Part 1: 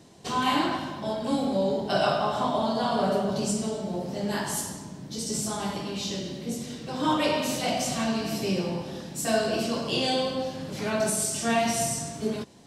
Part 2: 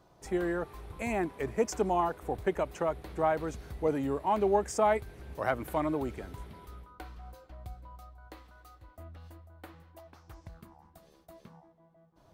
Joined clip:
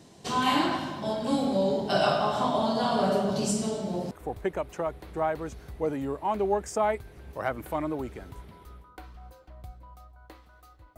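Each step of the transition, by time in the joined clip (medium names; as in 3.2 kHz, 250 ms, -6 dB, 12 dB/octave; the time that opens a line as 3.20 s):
part 1
4.11 s: go over to part 2 from 2.13 s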